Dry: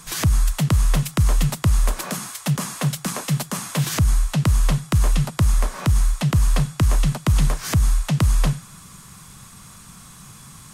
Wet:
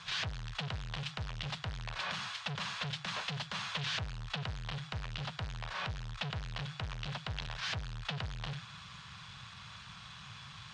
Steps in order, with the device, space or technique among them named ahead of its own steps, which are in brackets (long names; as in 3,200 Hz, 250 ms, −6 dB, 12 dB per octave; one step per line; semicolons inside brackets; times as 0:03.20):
scooped metal amplifier (tube saturation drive 31 dB, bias 0.5; loudspeaker in its box 97–3,700 Hz, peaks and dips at 110 Hz +4 dB, 1,200 Hz −3 dB, 2,100 Hz −4 dB; guitar amp tone stack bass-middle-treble 10-0-10)
level +9 dB